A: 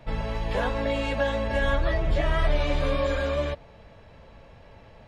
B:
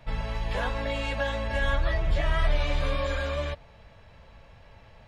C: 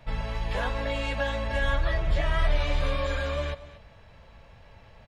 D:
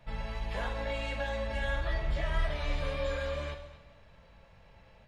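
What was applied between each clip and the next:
bell 340 Hz -7.5 dB 2.1 oct
echo 0.234 s -16.5 dB
two-slope reverb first 0.74 s, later 2.5 s, DRR 4 dB; gain -7 dB

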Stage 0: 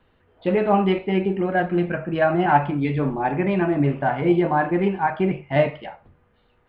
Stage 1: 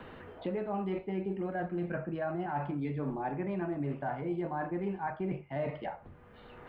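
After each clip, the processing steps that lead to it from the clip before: reverse; compressor, threshold -28 dBFS, peak gain reduction 16 dB; reverse; dynamic EQ 2900 Hz, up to -7 dB, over -54 dBFS, Q 1.1; three-band squash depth 70%; gain -4 dB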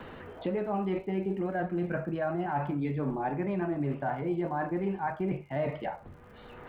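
vibrato 6.1 Hz 27 cents; crackle 72/s -58 dBFS; gain +3.5 dB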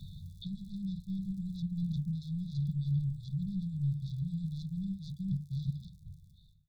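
ending faded out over 1.00 s; soft clip -28.5 dBFS, distortion -14 dB; brick-wall FIR band-stop 190–3400 Hz; gain +7 dB

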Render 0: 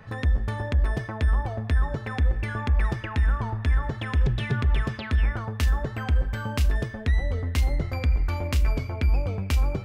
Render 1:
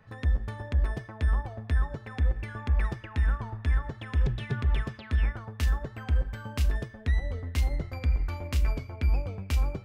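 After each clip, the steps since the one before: upward expander 1.5:1, over -34 dBFS; gain -2.5 dB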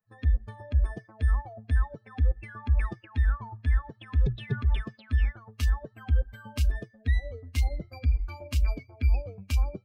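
per-bin expansion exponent 2; gain +3.5 dB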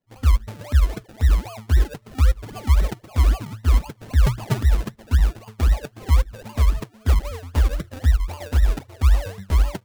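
decimation with a swept rate 33×, swing 60% 3.8 Hz; gain +7.5 dB

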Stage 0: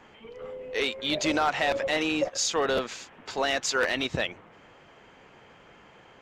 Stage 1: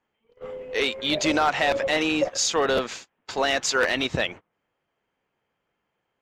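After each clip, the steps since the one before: gate -40 dBFS, range -28 dB; gain +3.5 dB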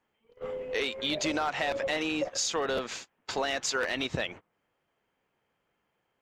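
compressor 3:1, threshold -29 dBFS, peak gain reduction 9.5 dB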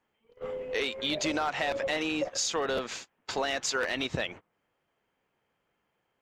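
nothing audible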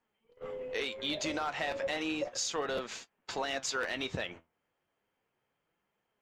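flange 0.33 Hz, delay 4.2 ms, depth 8.6 ms, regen +70%

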